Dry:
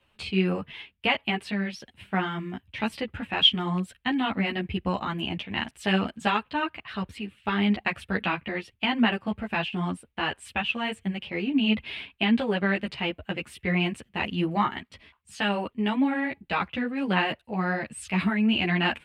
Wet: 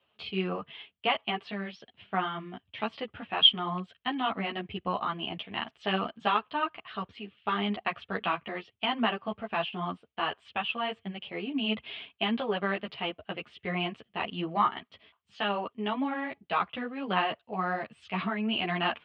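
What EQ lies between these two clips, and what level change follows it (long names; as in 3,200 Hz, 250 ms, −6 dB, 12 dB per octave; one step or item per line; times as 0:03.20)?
loudspeaker in its box 110–4,800 Hz, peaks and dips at 430 Hz +6 dB, 680 Hz +9 dB, 1,200 Hz +6 dB, 3,200 Hz +8 dB
dynamic equaliser 1,100 Hz, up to +6 dB, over −40 dBFS, Q 2
−8.5 dB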